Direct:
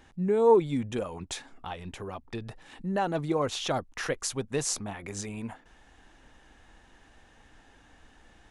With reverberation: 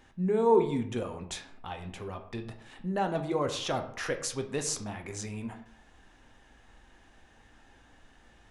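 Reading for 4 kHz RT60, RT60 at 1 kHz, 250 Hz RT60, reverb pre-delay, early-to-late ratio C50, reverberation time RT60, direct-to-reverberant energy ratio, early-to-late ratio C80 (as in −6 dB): 0.40 s, 0.65 s, 0.65 s, 6 ms, 11.0 dB, 0.65 s, 5.5 dB, 14.0 dB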